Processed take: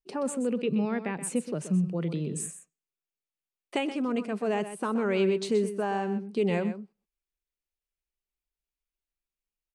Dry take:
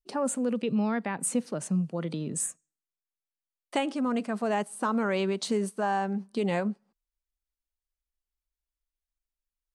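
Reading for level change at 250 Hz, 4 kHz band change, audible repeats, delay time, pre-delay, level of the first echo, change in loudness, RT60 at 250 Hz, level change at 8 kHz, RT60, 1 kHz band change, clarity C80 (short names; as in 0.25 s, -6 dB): 0.0 dB, -1.5 dB, 1, 0.126 s, none, -11.5 dB, 0.0 dB, none, -4.5 dB, none, -3.5 dB, none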